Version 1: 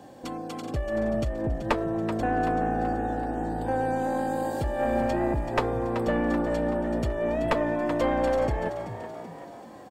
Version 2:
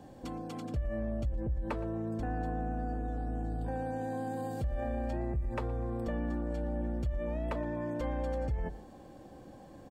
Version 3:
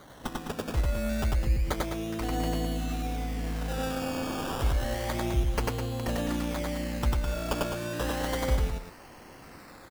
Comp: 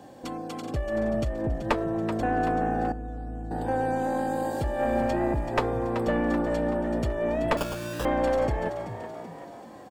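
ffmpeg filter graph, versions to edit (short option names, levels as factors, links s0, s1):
-filter_complex "[0:a]asplit=3[s0][s1][s2];[s0]atrim=end=2.922[s3];[1:a]atrim=start=2.918:end=3.512[s4];[s1]atrim=start=3.508:end=7.572[s5];[2:a]atrim=start=7.568:end=8.052[s6];[s2]atrim=start=8.048[s7];[s3][s4]acrossfade=d=0.004:c1=hsin:c2=hsin[s8];[s8][s5]acrossfade=d=0.004:c1=hsin:c2=hsin[s9];[s9][s6]acrossfade=d=0.004:c1=hsin:c2=hsin[s10];[s10][s7]acrossfade=d=0.004:c1=hsin:c2=hsin"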